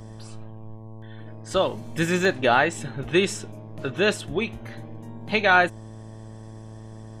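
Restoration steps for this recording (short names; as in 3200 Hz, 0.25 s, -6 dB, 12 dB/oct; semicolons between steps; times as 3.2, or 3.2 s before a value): de-hum 110.1 Hz, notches 10; interpolate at 1.87/2.25/2.73, 1.2 ms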